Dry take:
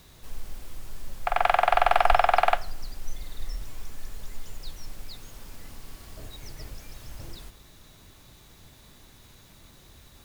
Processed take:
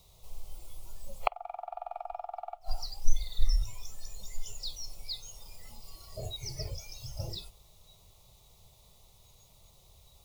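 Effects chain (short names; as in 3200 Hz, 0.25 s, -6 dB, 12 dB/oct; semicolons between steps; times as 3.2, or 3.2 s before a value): flipped gate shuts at -13 dBFS, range -27 dB; fixed phaser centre 670 Hz, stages 4; spectral noise reduction 15 dB; gain +9.5 dB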